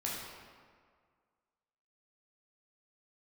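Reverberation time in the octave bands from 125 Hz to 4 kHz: 1.8 s, 1.8 s, 1.8 s, 1.9 s, 1.5 s, 1.1 s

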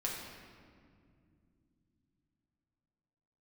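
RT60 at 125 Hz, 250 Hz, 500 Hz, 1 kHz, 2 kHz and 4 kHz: 4.6 s, 4.3 s, 2.7 s, 1.9 s, 1.7 s, 1.3 s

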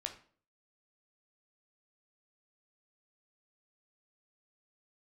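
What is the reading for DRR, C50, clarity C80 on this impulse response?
4.0 dB, 10.5 dB, 15.0 dB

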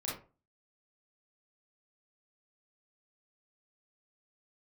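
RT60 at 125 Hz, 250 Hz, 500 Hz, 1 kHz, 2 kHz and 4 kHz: 0.45 s, 0.40 s, 0.35 s, 0.35 s, 0.25 s, 0.20 s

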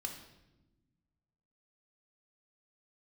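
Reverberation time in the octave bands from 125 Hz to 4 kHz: 2.1 s, 1.9 s, 1.2 s, 0.85 s, 0.80 s, 0.80 s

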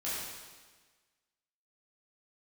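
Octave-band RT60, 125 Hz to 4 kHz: 1.4 s, 1.4 s, 1.4 s, 1.4 s, 1.4 s, 1.4 s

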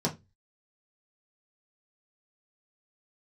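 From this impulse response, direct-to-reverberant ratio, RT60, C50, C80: -3.5 dB, 0.20 s, 16.0 dB, 25.0 dB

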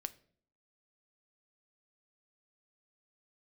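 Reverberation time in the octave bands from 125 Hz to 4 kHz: 0.65 s, 0.75 s, 0.65 s, 0.45 s, 0.45 s, 0.40 s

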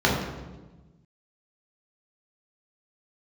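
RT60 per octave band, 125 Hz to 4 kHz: 1.9 s, 1.6 s, 1.3 s, 1.1 s, 0.90 s, 0.85 s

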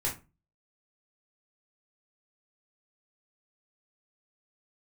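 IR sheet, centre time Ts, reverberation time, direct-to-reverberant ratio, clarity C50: 22 ms, 0.30 s, -4.5 dB, 10.0 dB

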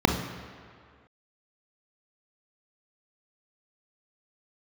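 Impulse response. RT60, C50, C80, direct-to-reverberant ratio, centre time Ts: 2.1 s, 6.5 dB, 9.0 dB, 4.5 dB, 35 ms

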